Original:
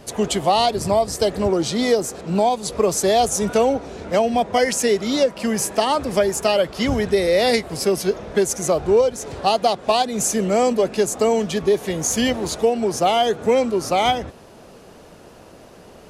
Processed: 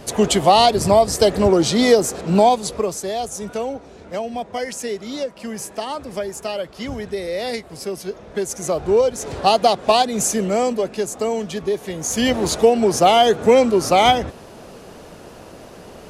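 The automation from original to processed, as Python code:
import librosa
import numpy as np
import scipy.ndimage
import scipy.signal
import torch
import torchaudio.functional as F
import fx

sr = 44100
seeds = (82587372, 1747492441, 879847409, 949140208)

y = fx.gain(x, sr, db=fx.line((2.52, 4.5), (3.02, -8.0), (8.1, -8.0), (9.31, 3.0), (9.96, 3.0), (10.97, -4.0), (12.0, -4.0), (12.4, 4.5)))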